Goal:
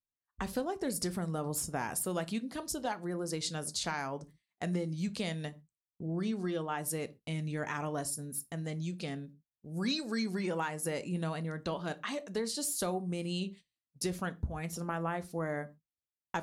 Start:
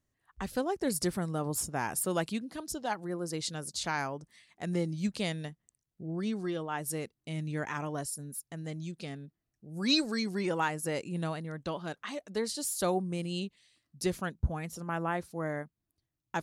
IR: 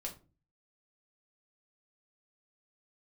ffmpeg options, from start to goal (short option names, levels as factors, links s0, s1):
-filter_complex "[0:a]agate=range=0.0447:threshold=0.00251:ratio=16:detection=peak,acompressor=threshold=0.02:ratio=5,asplit=2[s0][s1];[1:a]atrim=start_sample=2205,atrim=end_sample=6174[s2];[s1][s2]afir=irnorm=-1:irlink=0,volume=0.562[s3];[s0][s3]amix=inputs=2:normalize=0"